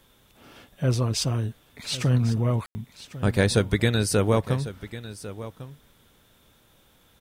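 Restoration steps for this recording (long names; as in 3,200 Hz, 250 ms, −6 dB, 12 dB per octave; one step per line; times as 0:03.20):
ambience match 0:02.66–0:02.75
echo removal 1,099 ms −15 dB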